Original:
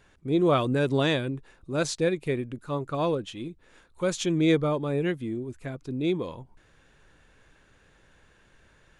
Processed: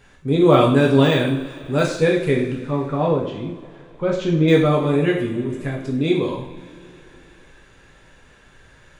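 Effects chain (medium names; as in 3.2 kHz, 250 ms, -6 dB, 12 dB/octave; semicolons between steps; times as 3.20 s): 2.54–4.48 s: tape spacing loss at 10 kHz 31 dB; de-esser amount 90%; on a send: feedback echo behind a high-pass 150 ms, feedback 81%, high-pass 1.6 kHz, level -22 dB; on the sum: two-slope reverb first 0.57 s, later 3.3 s, from -21 dB, DRR -2 dB; trim +5.5 dB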